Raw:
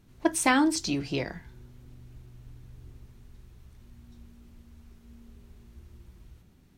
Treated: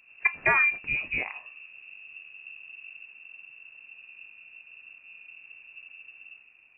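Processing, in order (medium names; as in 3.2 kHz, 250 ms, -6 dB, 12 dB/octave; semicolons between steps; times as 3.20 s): frequency inversion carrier 2.7 kHz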